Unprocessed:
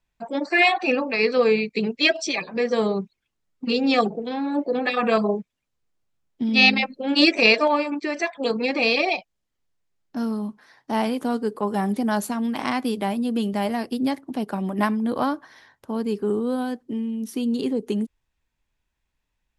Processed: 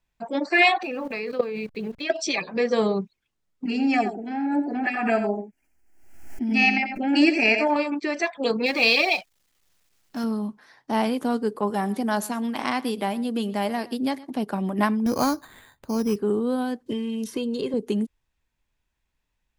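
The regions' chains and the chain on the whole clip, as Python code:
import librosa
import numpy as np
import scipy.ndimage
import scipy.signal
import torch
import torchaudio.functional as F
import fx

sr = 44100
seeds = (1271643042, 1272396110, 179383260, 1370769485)

y = fx.chain(x, sr, fx.delta_hold(step_db=-41.5),
    fx.high_shelf(hz=4400.0, db=-11.0),
    fx.level_steps(step_db=15), at=(0.83, 2.1))
y = fx.chain(y, sr, fx.fixed_phaser(hz=750.0, stages=8),
    fx.echo_single(ms=87, db=-9.0),
    fx.pre_swell(db_per_s=58.0), at=(3.65, 7.76))
y = fx.chain(y, sr, fx.law_mismatch(coded='mu'),
    fx.tilt_shelf(db=-4.0, hz=1200.0), at=(8.66, 10.24))
y = fx.chain(y, sr, fx.low_shelf(hz=170.0, db=-8.5),
    fx.echo_single(ms=118, db=-20.5), at=(11.7, 14.37))
y = fx.chain(y, sr, fx.resample_bad(factor=8, down='none', up='hold'),
    fx.low_shelf(hz=100.0, db=12.0), at=(15.06, 16.16))
y = fx.chain(y, sr, fx.high_shelf(hz=9400.0, db=-11.0),
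    fx.comb(ms=1.9, depth=0.54),
    fx.band_squash(depth_pct=100), at=(16.86, 17.74))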